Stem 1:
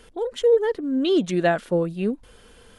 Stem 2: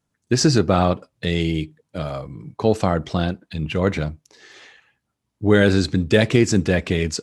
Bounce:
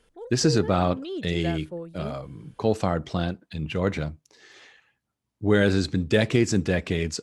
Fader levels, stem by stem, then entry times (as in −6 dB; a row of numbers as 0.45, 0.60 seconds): −13.5, −5.0 decibels; 0.00, 0.00 seconds